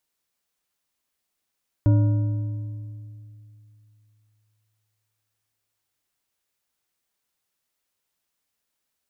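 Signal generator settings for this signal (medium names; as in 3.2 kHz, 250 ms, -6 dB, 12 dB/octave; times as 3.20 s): metal hit bar, length 5.28 s, lowest mode 107 Hz, modes 5, decay 2.96 s, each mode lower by 9 dB, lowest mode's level -13 dB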